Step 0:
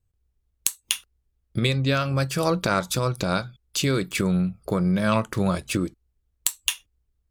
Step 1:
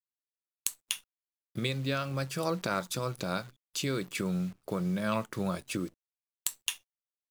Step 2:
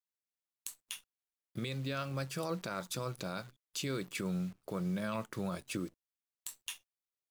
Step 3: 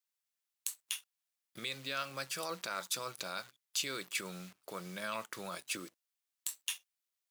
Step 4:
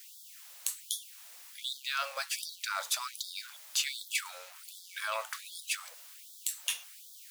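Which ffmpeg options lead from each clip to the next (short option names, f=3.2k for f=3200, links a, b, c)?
-af "highpass=120,acrusher=bits=8:dc=4:mix=0:aa=0.000001,volume=-8.5dB"
-af "alimiter=limit=-22.5dB:level=0:latency=1:release=24,volume=-4dB"
-af "highpass=f=1.5k:p=1,volume=5.5dB"
-af "aeval=exprs='val(0)+0.5*0.00422*sgn(val(0))':c=same,afftfilt=real='re*gte(b*sr/1024,440*pow(3300/440,0.5+0.5*sin(2*PI*1.3*pts/sr)))':imag='im*gte(b*sr/1024,440*pow(3300/440,0.5+0.5*sin(2*PI*1.3*pts/sr)))':win_size=1024:overlap=0.75,volume=4dB"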